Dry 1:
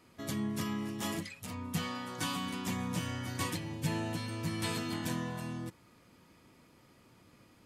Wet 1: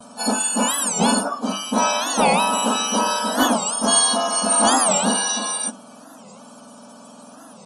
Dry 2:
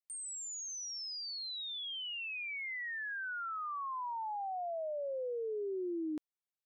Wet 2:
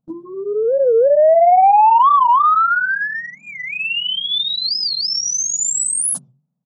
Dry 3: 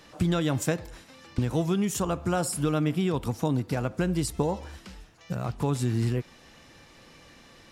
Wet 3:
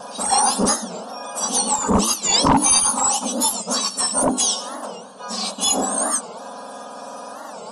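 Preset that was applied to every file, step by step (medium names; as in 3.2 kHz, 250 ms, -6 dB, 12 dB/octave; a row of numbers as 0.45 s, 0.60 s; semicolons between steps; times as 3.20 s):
spectrum inverted on a logarithmic axis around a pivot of 1.7 kHz; gate with hold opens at -59 dBFS; hum notches 50/100/150/200/250/300/350/400 Hz; harmonic-percussive split harmonic +7 dB; bass shelf 310 Hz +6 dB; sine folder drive 9 dB, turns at -7 dBFS; static phaser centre 860 Hz, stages 4; saturation -12 dBFS; resampled via 22.05 kHz; warped record 45 rpm, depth 250 cents; peak normalisation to -6 dBFS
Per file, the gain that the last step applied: +7.0 dB, +11.0 dB, +4.5 dB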